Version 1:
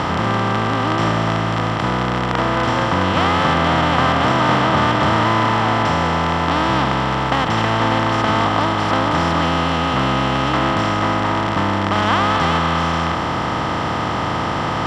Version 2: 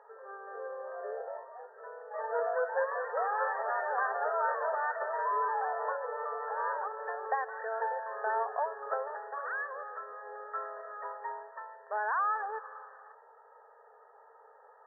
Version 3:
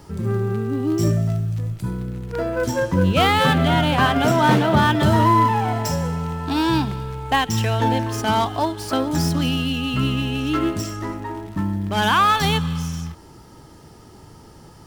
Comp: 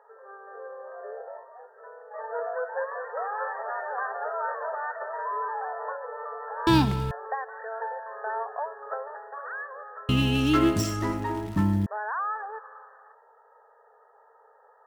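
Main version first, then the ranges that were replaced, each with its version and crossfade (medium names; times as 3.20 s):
2
6.67–7.11 s: from 3
10.09–11.86 s: from 3
not used: 1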